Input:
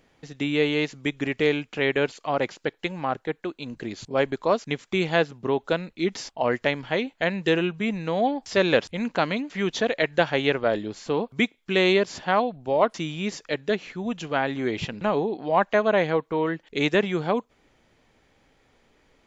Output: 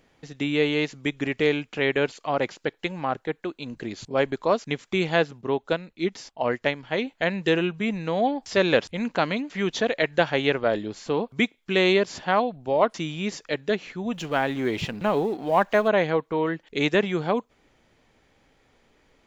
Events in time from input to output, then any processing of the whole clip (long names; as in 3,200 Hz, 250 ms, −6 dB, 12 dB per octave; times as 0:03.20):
0:05.41–0:06.98: expander for the loud parts, over −31 dBFS
0:14.13–0:15.88: mu-law and A-law mismatch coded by mu